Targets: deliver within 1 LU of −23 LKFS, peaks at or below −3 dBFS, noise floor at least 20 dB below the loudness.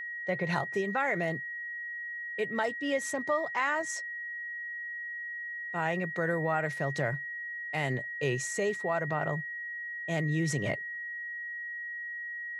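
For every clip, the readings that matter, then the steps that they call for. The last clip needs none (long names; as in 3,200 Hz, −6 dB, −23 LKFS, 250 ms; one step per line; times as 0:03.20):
interfering tone 1,900 Hz; level of the tone −36 dBFS; integrated loudness −32.5 LKFS; sample peak −16.0 dBFS; target loudness −23.0 LKFS
→ notch filter 1,900 Hz, Q 30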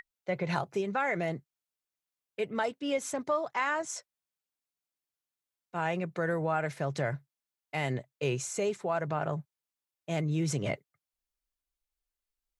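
interfering tone none found; integrated loudness −33.0 LKFS; sample peak −16.0 dBFS; target loudness −23.0 LKFS
→ level +10 dB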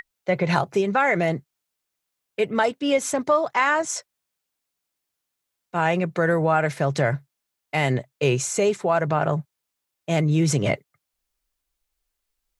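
integrated loudness −23.0 LKFS; sample peak −6.0 dBFS; background noise floor −82 dBFS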